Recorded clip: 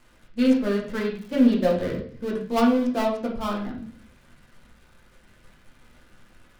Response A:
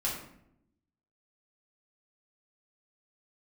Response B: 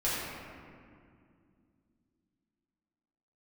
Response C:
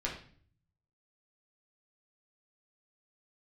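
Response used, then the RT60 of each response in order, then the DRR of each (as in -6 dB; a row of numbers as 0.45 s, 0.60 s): C; 0.75 s, 2.3 s, 0.50 s; -5.0 dB, -10.0 dB, -3.5 dB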